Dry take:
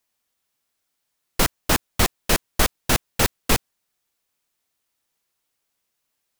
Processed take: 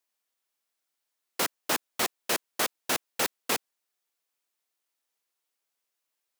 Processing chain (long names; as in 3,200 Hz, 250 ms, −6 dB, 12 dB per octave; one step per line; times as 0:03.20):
high-pass filter 320 Hz 12 dB per octave
level −6.5 dB